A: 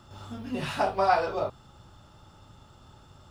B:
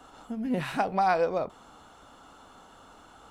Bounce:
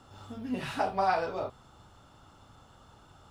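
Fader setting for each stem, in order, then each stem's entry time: -5.5, -8.0 dB; 0.00, 0.00 s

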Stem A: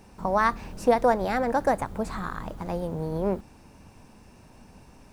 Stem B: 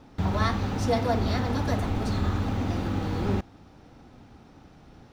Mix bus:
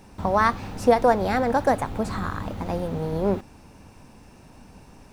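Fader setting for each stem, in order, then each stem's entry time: +2.5, -7.0 dB; 0.00, 0.00 s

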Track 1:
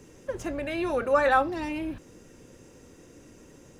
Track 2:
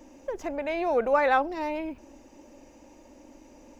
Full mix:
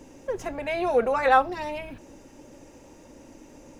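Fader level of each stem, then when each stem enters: -2.0, +1.0 dB; 0.00, 0.00 s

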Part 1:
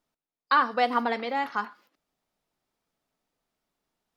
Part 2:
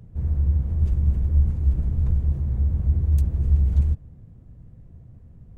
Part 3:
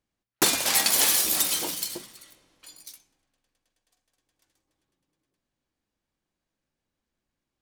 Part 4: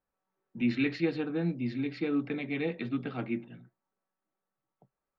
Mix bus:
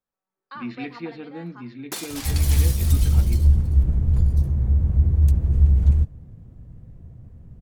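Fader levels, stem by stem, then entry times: -17.5, +3.0, -11.0, -4.5 dB; 0.00, 2.10, 1.50, 0.00 s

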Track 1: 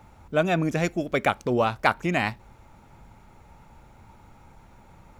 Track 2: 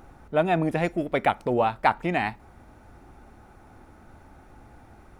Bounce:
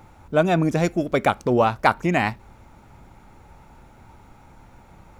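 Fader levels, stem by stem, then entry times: +2.0, -5.5 dB; 0.00, 0.00 s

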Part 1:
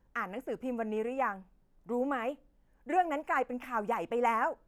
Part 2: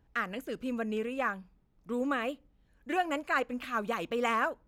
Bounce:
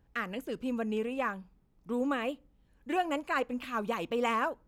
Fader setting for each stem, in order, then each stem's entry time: -8.0, -1.0 dB; 0.00, 0.00 s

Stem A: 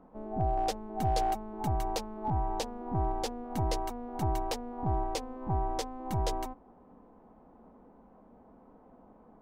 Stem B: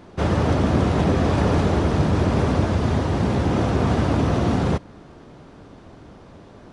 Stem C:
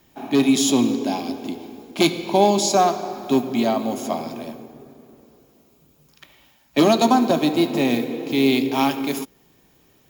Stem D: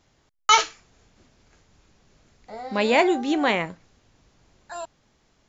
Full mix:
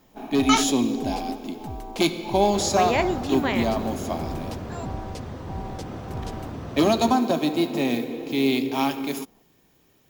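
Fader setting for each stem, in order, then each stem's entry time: -5.0, -15.0, -4.0, -5.0 dB; 0.00, 2.35, 0.00, 0.00 s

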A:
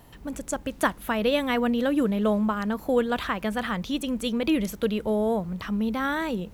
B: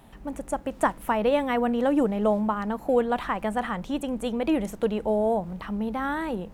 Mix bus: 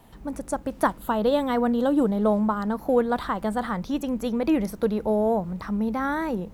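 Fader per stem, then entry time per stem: -5.0, -2.5 dB; 0.00, 0.00 s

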